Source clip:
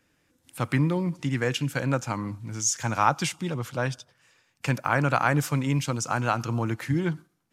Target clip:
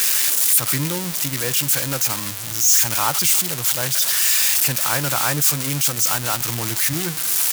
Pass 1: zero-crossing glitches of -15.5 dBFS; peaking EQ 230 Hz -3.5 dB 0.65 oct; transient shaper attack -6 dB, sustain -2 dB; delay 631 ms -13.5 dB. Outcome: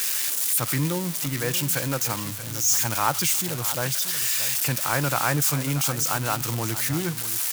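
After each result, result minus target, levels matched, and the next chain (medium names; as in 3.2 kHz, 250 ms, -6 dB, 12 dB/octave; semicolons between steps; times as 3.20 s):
echo-to-direct +10 dB; zero-crossing glitches: distortion -7 dB
zero-crossing glitches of -15.5 dBFS; peaking EQ 230 Hz -3.5 dB 0.65 oct; transient shaper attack -6 dB, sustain -2 dB; delay 631 ms -23.5 dB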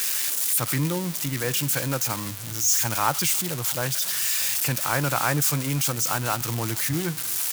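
zero-crossing glitches: distortion -7 dB
zero-crossing glitches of -8 dBFS; peaking EQ 230 Hz -3.5 dB 0.65 oct; transient shaper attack -6 dB, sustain -2 dB; delay 631 ms -23.5 dB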